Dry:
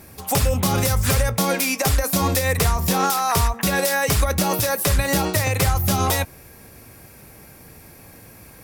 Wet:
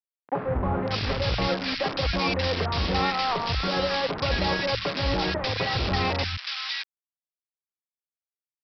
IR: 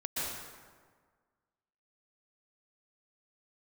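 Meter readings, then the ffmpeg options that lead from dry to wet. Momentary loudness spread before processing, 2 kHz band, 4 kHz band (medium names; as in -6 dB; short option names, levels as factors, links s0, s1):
2 LU, -4.0 dB, -0.5 dB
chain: -filter_complex "[0:a]highpass=f=57:p=1,bandreject=f=50:t=h:w=6,bandreject=f=100:t=h:w=6,bandreject=f=150:t=h:w=6,bandreject=f=200:t=h:w=6,bandreject=f=250:t=h:w=6,bandreject=f=300:t=h:w=6,aresample=11025,acrusher=bits=3:mix=0:aa=0.000001,aresample=44100,acrossover=split=160|1500[s0][s1][s2];[s0]adelay=130[s3];[s2]adelay=590[s4];[s3][s1][s4]amix=inputs=3:normalize=0,volume=0.631"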